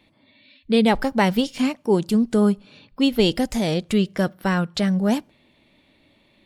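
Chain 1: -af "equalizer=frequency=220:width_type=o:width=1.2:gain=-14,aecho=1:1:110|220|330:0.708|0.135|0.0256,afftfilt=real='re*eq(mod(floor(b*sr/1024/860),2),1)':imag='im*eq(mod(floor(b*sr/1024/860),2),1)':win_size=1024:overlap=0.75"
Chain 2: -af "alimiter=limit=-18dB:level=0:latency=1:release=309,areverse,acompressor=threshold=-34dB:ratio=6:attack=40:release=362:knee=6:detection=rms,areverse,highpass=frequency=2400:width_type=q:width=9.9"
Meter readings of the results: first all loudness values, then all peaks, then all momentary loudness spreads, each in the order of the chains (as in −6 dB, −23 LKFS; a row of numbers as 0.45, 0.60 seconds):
−30.5, −38.0 LKFS; −13.5, −20.0 dBFS; 11, 14 LU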